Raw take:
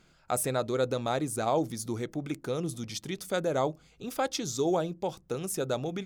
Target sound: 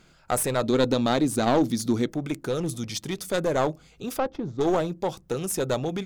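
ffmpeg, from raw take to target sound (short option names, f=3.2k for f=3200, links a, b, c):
-filter_complex "[0:a]aeval=exprs='clip(val(0),-1,0.0355)':c=same,asettb=1/sr,asplit=3[a][b][c];[a]atrim=end=0.634[d];[b]atrim=start=0.63:end=2.09,asetpts=PTS-STARTPTS,afade=t=in:d=0.004:c=qsin,afade=t=out:st=1.456:d=0.004:c=qsin,equalizer=f=250:t=o:w=0.67:g=9,equalizer=f=4k:t=o:w=0.67:g=6,equalizer=f=10k:t=o:w=0.67:g=-3[e];[c]atrim=start=2.086[f];[d][e]acrossfade=d=0.004:c1=hsin:c2=qsin[g];[g][f]acrossfade=d=0.004:c1=qsin:c2=hsin,asettb=1/sr,asplit=3[h][i][j];[h]atrim=end=4.184[k];[i]atrim=start=4.18:end=4.61,asetpts=PTS-STARTPTS,afade=t=in:d=0.004:c=qsin,afade=t=out:st=0.426:d=0.004:c=qsin,adynamicsmooth=sensitivity=1:basefreq=800[l];[j]atrim=start=4.606[m];[k][l]acrossfade=d=0.004:c1=hsin:c2=qsin[n];[n][m]acrossfade=d=0.004:c1=qsin:c2=hsin,volume=5.5dB"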